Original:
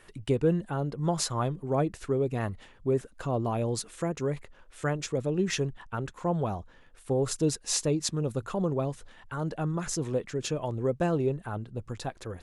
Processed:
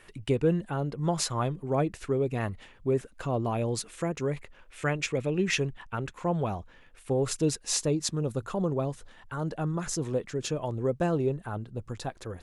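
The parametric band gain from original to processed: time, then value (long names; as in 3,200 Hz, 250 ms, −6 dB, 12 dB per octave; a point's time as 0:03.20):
parametric band 2,400 Hz 0.73 octaves
0:04.34 +4 dB
0:05.17 +14 dB
0:05.66 +6 dB
0:07.35 +6 dB
0:07.87 −1 dB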